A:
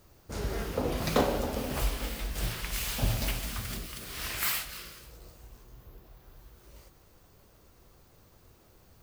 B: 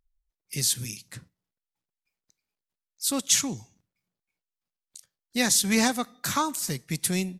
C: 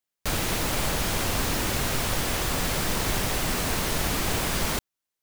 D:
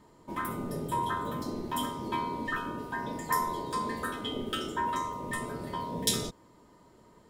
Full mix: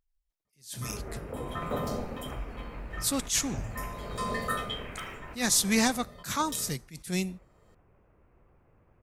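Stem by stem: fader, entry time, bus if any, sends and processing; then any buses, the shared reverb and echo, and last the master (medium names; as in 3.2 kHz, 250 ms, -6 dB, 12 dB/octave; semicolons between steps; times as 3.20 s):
-3.0 dB, 0.55 s, bus A, no send, modulation noise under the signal 15 dB
-2.0 dB, 0.00 s, no bus, no send, none
-17.5 dB, 1.25 s, bus A, no send, none
+2.5 dB, 0.45 s, no bus, no send, comb 1.6 ms, depth 81%; auto duck -16 dB, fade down 0.35 s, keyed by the second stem
bus A: 0.0 dB, FFT filter 950 Hz 0 dB, 2.5 kHz -4 dB, 4 kHz -30 dB; compression 1.5:1, threshold -40 dBFS, peak gain reduction 6.5 dB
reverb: none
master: attacks held to a fixed rise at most 190 dB/s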